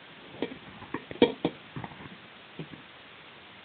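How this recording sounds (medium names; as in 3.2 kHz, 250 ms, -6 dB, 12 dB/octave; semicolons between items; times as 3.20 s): aliases and images of a low sample rate 1.4 kHz, jitter 0%; phasing stages 4, 0.92 Hz, lowest notch 510–1600 Hz; a quantiser's noise floor 8-bit, dither triangular; Speex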